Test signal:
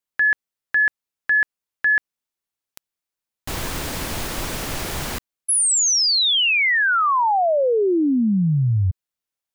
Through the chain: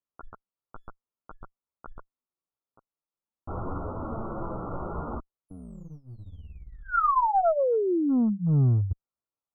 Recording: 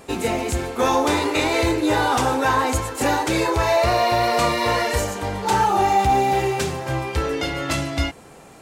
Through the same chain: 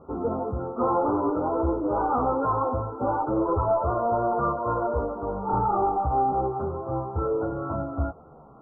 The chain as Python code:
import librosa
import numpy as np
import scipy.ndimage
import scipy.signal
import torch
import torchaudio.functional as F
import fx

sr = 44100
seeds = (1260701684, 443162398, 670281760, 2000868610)

y = fx.chorus_voices(x, sr, voices=2, hz=0.27, base_ms=13, depth_ms=4.2, mix_pct=50)
y = fx.clip_asym(y, sr, top_db=-20.5, bottom_db=-14.0)
y = scipy.signal.sosfilt(scipy.signal.ellip(6, 1.0, 50, 1400.0, 'lowpass', fs=sr, output='sos'), y)